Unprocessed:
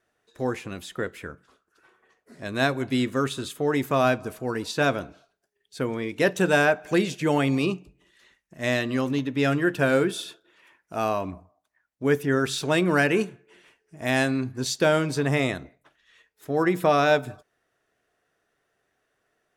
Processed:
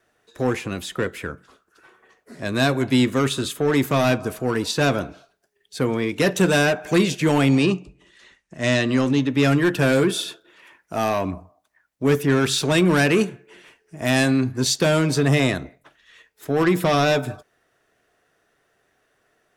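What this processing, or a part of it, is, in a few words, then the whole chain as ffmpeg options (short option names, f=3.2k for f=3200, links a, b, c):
one-band saturation: -filter_complex "[0:a]acrossover=split=260|2900[a][b][c];[b]asoftclip=type=tanh:threshold=-25dB[d];[a][d][c]amix=inputs=3:normalize=0,asettb=1/sr,asplit=3[e][f][g];[e]atrim=end=7.494[h];[f]atrim=start=7.49:end=9.3,asetpts=PTS-STARTPTS,afade=t=in:d=0.004:c=qsin,afade=t=out:st=1.806:d=0.004:c=qsin,lowpass=f=9.3k:w=0.5412,lowpass=f=9.3k:w=1.3066[i];[g]atrim=start=9.296[j];[h][i]acrossfade=d=0.004:c1=hsin:c2=qsin[k];[k][j]acrossfade=d=0.004:c1=qsin:c2=hsin,volume=7.5dB"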